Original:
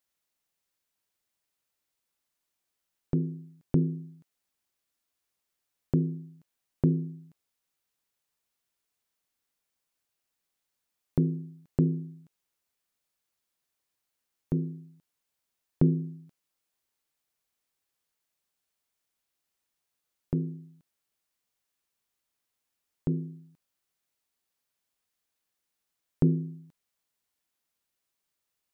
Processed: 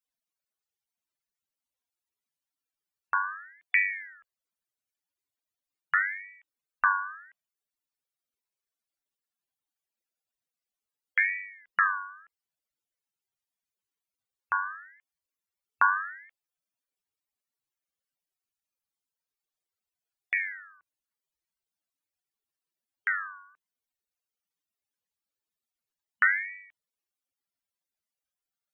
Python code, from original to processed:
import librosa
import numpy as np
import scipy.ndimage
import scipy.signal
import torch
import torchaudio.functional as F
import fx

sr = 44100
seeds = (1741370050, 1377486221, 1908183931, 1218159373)

y = fx.spec_topn(x, sr, count=64)
y = fx.ring_lfo(y, sr, carrier_hz=1700.0, swing_pct=25, hz=0.79)
y = y * librosa.db_to_amplitude(2.5)